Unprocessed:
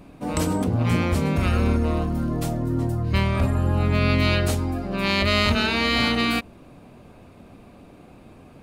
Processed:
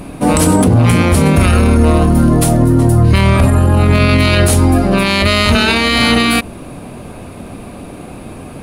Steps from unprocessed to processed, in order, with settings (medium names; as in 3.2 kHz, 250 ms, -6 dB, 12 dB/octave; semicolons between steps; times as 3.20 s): peaking EQ 10 kHz +13 dB 0.36 oct; in parallel at -12 dB: hard clipper -22.5 dBFS, distortion -8 dB; on the sum: loudness maximiser +16 dB; trim -1 dB